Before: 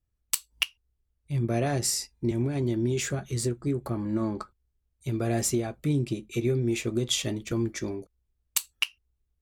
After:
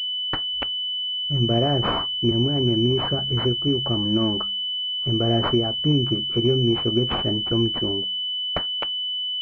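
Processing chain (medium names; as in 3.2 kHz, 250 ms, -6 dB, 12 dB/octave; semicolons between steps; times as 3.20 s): de-hum 67.36 Hz, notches 3; class-D stage that switches slowly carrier 3 kHz; trim +6 dB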